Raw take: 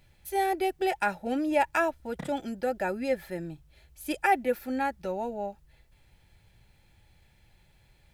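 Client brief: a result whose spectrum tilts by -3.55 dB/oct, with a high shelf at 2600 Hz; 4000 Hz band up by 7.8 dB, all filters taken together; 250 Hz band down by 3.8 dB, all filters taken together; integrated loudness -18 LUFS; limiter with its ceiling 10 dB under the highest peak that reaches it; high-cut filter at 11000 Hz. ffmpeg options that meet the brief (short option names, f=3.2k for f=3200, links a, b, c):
-af "lowpass=11k,equalizer=f=250:t=o:g=-5,highshelf=f=2.6k:g=4,equalizer=f=4k:t=o:g=7,volume=14.5dB,alimiter=limit=-6dB:level=0:latency=1"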